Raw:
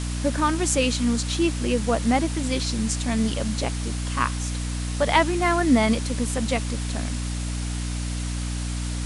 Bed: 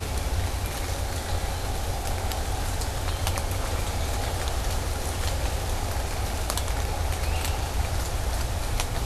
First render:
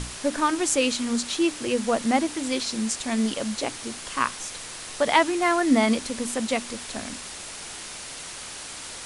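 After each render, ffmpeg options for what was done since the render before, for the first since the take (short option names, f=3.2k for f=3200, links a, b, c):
-af "bandreject=f=60:t=h:w=6,bandreject=f=120:t=h:w=6,bandreject=f=180:t=h:w=6,bandreject=f=240:t=h:w=6,bandreject=f=300:t=h:w=6"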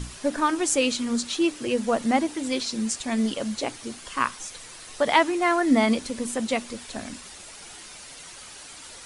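-af "afftdn=nr=8:nf=-38"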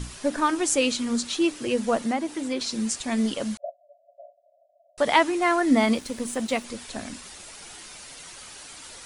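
-filter_complex "[0:a]asettb=1/sr,asplit=3[a][b][c];[a]atrim=end=1.984[d];[b]atrim=start=1.98:end=2.61,asetpts=PTS-STARTPTS,afade=t=in:d=0.004:c=qsin,afade=t=out:st=0.626:d=0.004:c=qsin,acrossover=split=140|2300[e][f][g];[e]acompressor=threshold=-56dB:ratio=4[h];[f]acompressor=threshold=-23dB:ratio=4[i];[g]acompressor=threshold=-42dB:ratio=4[j];[h][i][j]amix=inputs=3:normalize=0[k];[c]atrim=start=2.606[l];[d][k]acrossfade=d=0.004:c1=hsin:c2=qsin[m];[m][l]acrossfade=d=0.004:c1=qsin:c2=hsin,asettb=1/sr,asplit=3[n][o][p];[n]atrim=end=3.574[q];[o]atrim=start=3.57:end=4.98,asetpts=PTS-STARTPTS,afade=t=in:d=0.004:c=qsin,afade=t=out:st=1.406:d=0.004:c=qsin,asuperpass=centerf=630:order=20:qfactor=3.9[r];[p]atrim=start=4.976[s];[q][r]acrossfade=d=0.004:c1=hsin:c2=qsin[t];[t][s]acrossfade=d=0.004:c1=qsin:c2=hsin,asettb=1/sr,asplit=3[u][v][w];[u]atrim=end=5.784[x];[v]atrim=start=5.78:end=6.64,asetpts=PTS-STARTPTS,afade=t=in:d=0.004:c=qsin,afade=t=out:st=0.856:d=0.004:c=qsin,aeval=exprs='sgn(val(0))*max(abs(val(0))-0.00447,0)':c=same[y];[w]atrim=start=6.636[z];[x][y]acrossfade=d=0.004:c1=hsin:c2=qsin[aa];[aa][z]acrossfade=d=0.004:c1=qsin:c2=hsin"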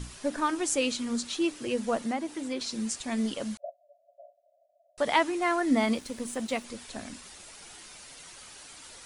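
-af "volume=-5dB"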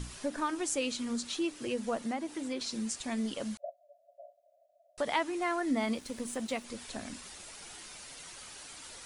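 -af "acompressor=threshold=-38dB:ratio=1.5"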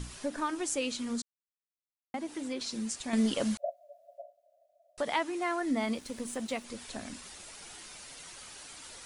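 -filter_complex "[0:a]asettb=1/sr,asplit=3[a][b][c];[a]atrim=end=3.134[d];[b]atrim=start=3.13:end=4.22,asetpts=PTS-STARTPTS,afade=t=in:d=0.004:c=qsin,afade=t=out:st=1.086:d=0.004:c=qsin,acontrast=69[e];[c]atrim=start=4.216[f];[d][e]acrossfade=d=0.004:c1=hsin:c2=qsin[g];[g][f]acrossfade=d=0.004:c1=qsin:c2=hsin,asettb=1/sr,asplit=3[h][i][j];[h]atrim=end=5.034[k];[i]atrim=start=5.03:end=5.62,asetpts=PTS-STARTPTS,afade=t=in:d=0.004:c=qsin,afade=t=out:st=0.586:d=0.004:c=qsin,highpass=88[l];[j]atrim=start=5.616[m];[k][l]acrossfade=d=0.004:c1=hsin:c2=qsin[n];[n][m]acrossfade=d=0.004:c1=qsin:c2=hsin,asplit=3[o][p][q];[o]atrim=end=1.22,asetpts=PTS-STARTPTS,afade=t=out:st=1.216:d=0.004:c=hsin[r];[p]atrim=start=1.22:end=2.14,asetpts=PTS-STARTPTS,volume=0[s];[q]atrim=start=2.14,asetpts=PTS-STARTPTS,afade=t=in:d=0.004:c=hsin[t];[r][s][t]concat=n=3:v=0:a=1"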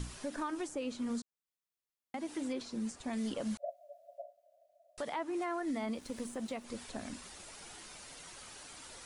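-filter_complex "[0:a]acrossover=split=1500[a][b];[a]alimiter=level_in=6dB:limit=-24dB:level=0:latency=1:release=149,volume=-6dB[c];[b]acompressor=threshold=-49dB:ratio=6[d];[c][d]amix=inputs=2:normalize=0"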